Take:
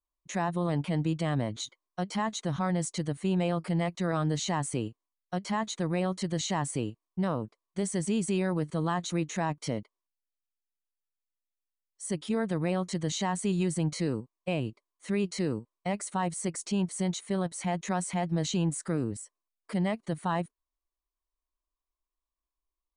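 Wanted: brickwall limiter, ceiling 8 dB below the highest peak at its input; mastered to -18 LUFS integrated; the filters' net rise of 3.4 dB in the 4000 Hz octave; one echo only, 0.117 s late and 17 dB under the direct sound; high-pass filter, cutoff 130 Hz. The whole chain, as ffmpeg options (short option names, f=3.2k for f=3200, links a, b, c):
-af "highpass=130,equalizer=f=4k:t=o:g=4,alimiter=limit=-24dB:level=0:latency=1,aecho=1:1:117:0.141,volume=16.5dB"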